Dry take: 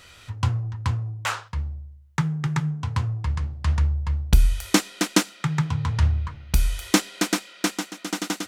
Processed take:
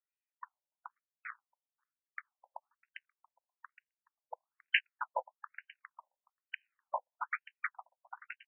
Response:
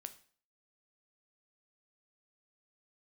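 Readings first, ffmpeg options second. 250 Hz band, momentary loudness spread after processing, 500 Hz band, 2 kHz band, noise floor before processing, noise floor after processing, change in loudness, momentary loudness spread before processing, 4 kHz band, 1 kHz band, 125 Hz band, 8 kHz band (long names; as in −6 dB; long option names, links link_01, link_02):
below −40 dB, 22 LU, −16.0 dB, −8.0 dB, −49 dBFS, below −85 dBFS, −14.5 dB, 8 LU, −14.5 dB, −10.5 dB, below −40 dB, below −40 dB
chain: -filter_complex "[0:a]highpass=250,equalizer=frequency=5000:width=1.9:gain=9.5,asplit=2[link_01][link_02];[link_02]adelay=530.6,volume=-11dB,highshelf=frequency=4000:gain=-11.9[link_03];[link_01][link_03]amix=inputs=2:normalize=0,acrossover=split=430|1100[link_04][link_05][link_06];[link_05]aeval=exprs='(mod(14.1*val(0)+1,2)-1)/14.1':channel_layout=same[link_07];[link_04][link_07][link_06]amix=inputs=3:normalize=0,aeval=exprs='0.841*(cos(1*acos(clip(val(0)/0.841,-1,1)))-cos(1*PI/2))+0.106*(cos(3*acos(clip(val(0)/0.841,-1,1)))-cos(3*PI/2))+0.00596*(cos(4*acos(clip(val(0)/0.841,-1,1)))-cos(4*PI/2))+0.075*(cos(7*acos(clip(val(0)/0.841,-1,1)))-cos(7*PI/2))':channel_layout=same,afftfilt=real='re*between(b*sr/1024,700*pow(2200/700,0.5+0.5*sin(2*PI*1.1*pts/sr))/1.41,700*pow(2200/700,0.5+0.5*sin(2*PI*1.1*pts/sr))*1.41)':imag='im*between(b*sr/1024,700*pow(2200/700,0.5+0.5*sin(2*PI*1.1*pts/sr))/1.41,700*pow(2200/700,0.5+0.5*sin(2*PI*1.1*pts/sr))*1.41)':win_size=1024:overlap=0.75,volume=4dB"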